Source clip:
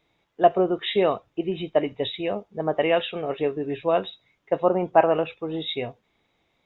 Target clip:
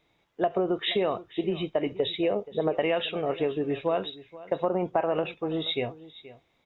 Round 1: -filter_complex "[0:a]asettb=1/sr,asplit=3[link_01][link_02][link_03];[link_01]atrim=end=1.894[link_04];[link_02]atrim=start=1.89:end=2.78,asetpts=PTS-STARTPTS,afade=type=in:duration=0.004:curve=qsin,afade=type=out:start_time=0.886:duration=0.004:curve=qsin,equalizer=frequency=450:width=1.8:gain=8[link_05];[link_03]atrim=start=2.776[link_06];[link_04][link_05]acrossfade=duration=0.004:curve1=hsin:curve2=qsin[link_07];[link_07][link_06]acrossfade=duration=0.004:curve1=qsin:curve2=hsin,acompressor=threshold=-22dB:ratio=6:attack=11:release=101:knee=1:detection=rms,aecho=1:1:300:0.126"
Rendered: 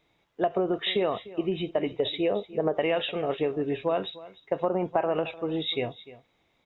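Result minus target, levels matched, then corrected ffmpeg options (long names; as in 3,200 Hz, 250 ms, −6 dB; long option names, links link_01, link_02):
echo 177 ms early
-filter_complex "[0:a]asettb=1/sr,asplit=3[link_01][link_02][link_03];[link_01]atrim=end=1.894[link_04];[link_02]atrim=start=1.89:end=2.78,asetpts=PTS-STARTPTS,afade=type=in:duration=0.004:curve=qsin,afade=type=out:start_time=0.886:duration=0.004:curve=qsin,equalizer=frequency=450:width=1.8:gain=8[link_05];[link_03]atrim=start=2.776[link_06];[link_04][link_05]acrossfade=duration=0.004:curve1=hsin:curve2=qsin[link_07];[link_07][link_06]acrossfade=duration=0.004:curve1=qsin:curve2=hsin,acompressor=threshold=-22dB:ratio=6:attack=11:release=101:knee=1:detection=rms,aecho=1:1:477:0.126"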